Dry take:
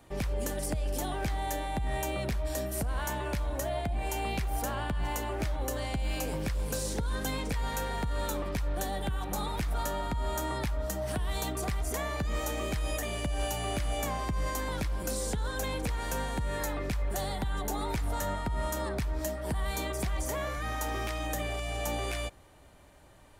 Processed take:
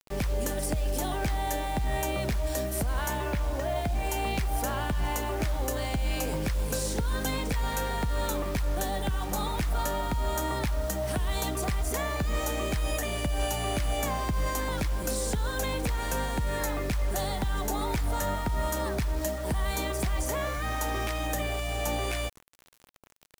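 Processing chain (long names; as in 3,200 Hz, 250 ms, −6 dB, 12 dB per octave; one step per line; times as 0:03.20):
0:03.25–0:03.76: low-pass filter 3,300 Hz
bit-depth reduction 8 bits, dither none
level +3 dB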